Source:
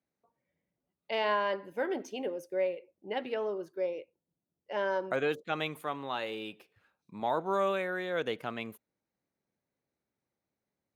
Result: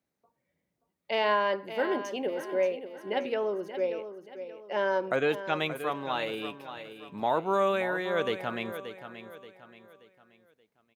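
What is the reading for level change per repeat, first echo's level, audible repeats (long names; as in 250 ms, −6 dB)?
−8.5 dB, −11.0 dB, 3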